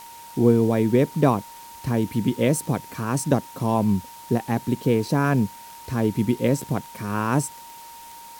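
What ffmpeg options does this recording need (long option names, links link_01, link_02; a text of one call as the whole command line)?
ffmpeg -i in.wav -af "adeclick=threshold=4,bandreject=frequency=930:width=30,afwtdn=0.005" out.wav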